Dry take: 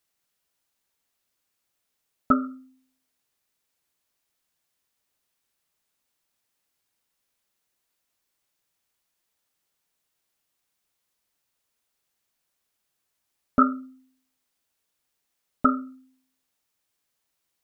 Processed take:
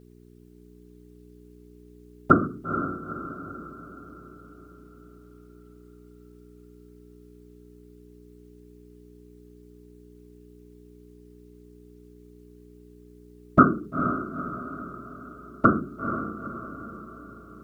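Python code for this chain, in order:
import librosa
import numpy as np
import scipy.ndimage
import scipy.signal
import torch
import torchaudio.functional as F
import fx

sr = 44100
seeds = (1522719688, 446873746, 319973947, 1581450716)

y = fx.whisperise(x, sr, seeds[0])
y = fx.dmg_buzz(y, sr, base_hz=60.0, harmonics=7, level_db=-56.0, tilt_db=-1, odd_only=False)
y = fx.echo_diffused(y, sr, ms=464, feedback_pct=50, wet_db=-8)
y = F.gain(torch.from_numpy(y), 4.0).numpy()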